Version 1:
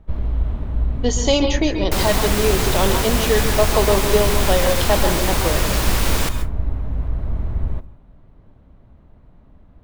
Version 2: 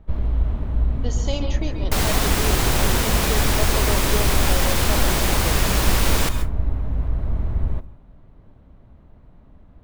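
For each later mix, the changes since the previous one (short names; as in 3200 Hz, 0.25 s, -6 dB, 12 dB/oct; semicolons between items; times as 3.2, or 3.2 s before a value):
speech -11.5 dB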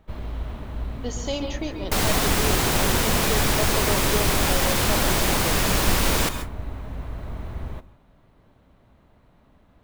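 first sound: add tilt +2.5 dB/oct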